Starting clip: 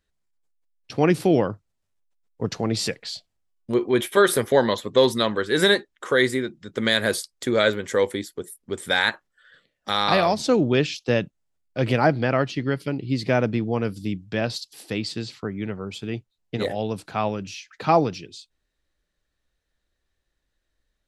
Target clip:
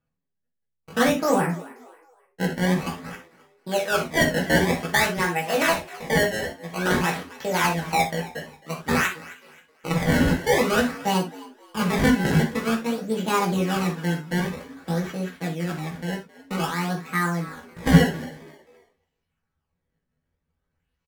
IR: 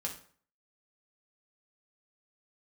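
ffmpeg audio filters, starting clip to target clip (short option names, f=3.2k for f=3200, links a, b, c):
-filter_complex "[0:a]aemphasis=mode=reproduction:type=cd,acrusher=samples=34:mix=1:aa=0.000001:lfo=1:lforange=54.4:lforate=0.51,equalizer=f=125:t=o:w=1:g=6,equalizer=f=500:t=o:w=1:g=-3,equalizer=f=1k:t=o:w=1:g=7,asetrate=72056,aresample=44100,atempo=0.612027,asplit=4[a][b][c][d];[b]adelay=266,afreqshift=74,volume=-19.5dB[e];[c]adelay=532,afreqshift=148,volume=-29.1dB[f];[d]adelay=798,afreqshift=222,volume=-38.8dB[g];[a][e][f][g]amix=inputs=4:normalize=0[h];[1:a]atrim=start_sample=2205,afade=t=out:st=0.13:d=0.01,atrim=end_sample=6174,asetrate=41454,aresample=44100[i];[h][i]afir=irnorm=-1:irlink=0,volume=-3.5dB"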